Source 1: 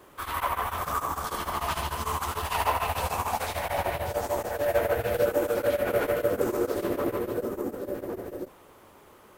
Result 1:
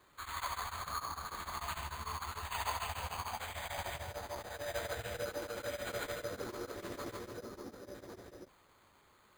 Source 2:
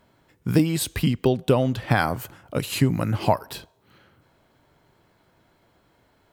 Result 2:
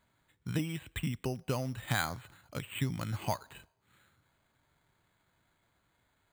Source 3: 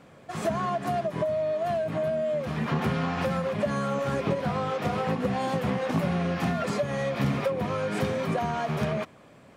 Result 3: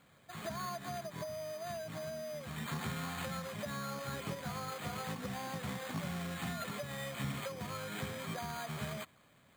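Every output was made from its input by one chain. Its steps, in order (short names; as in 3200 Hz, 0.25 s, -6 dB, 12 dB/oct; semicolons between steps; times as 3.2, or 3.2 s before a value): passive tone stack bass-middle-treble 5-5-5; careless resampling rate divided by 8×, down filtered, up hold; gain +3.5 dB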